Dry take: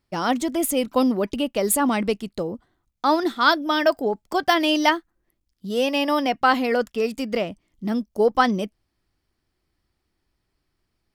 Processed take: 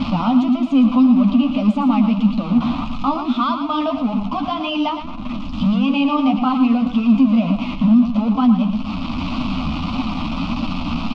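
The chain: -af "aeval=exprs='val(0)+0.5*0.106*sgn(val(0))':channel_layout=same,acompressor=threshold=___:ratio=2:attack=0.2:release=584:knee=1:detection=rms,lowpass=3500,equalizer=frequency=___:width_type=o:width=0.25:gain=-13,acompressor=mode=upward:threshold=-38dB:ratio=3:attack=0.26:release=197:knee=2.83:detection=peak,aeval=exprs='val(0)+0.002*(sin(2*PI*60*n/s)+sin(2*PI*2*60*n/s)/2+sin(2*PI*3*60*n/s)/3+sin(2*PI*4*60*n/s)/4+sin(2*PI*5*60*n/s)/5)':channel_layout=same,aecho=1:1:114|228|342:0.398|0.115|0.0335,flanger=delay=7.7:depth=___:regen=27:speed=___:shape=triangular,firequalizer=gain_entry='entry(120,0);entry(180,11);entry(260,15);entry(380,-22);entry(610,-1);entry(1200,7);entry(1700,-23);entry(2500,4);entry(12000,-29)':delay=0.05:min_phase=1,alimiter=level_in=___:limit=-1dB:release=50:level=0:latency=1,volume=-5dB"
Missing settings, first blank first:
-24dB, 120, 6.1, 1.7, 10dB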